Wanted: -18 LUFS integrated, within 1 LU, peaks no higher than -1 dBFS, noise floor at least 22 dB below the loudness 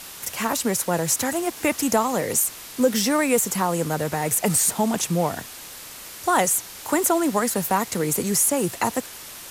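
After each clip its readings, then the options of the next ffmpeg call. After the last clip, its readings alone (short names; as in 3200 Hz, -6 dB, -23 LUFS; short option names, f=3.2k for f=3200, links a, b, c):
noise floor -40 dBFS; noise floor target -44 dBFS; loudness -22.0 LUFS; peak -7.5 dBFS; loudness target -18.0 LUFS
-> -af "afftdn=nr=6:nf=-40"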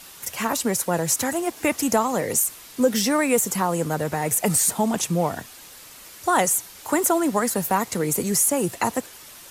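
noise floor -44 dBFS; loudness -22.0 LUFS; peak -7.5 dBFS; loudness target -18.0 LUFS
-> -af "volume=4dB"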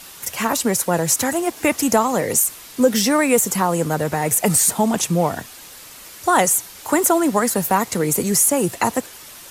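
loudness -18.0 LUFS; peak -3.5 dBFS; noise floor -40 dBFS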